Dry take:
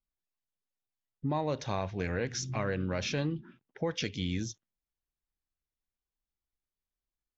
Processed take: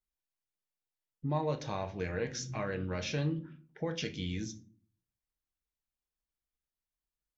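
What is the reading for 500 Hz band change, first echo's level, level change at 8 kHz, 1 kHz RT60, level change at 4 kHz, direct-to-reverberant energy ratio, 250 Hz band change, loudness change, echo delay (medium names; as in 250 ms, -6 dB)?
-2.0 dB, no echo, no reading, 0.40 s, -3.5 dB, 5.5 dB, -2.5 dB, -2.0 dB, no echo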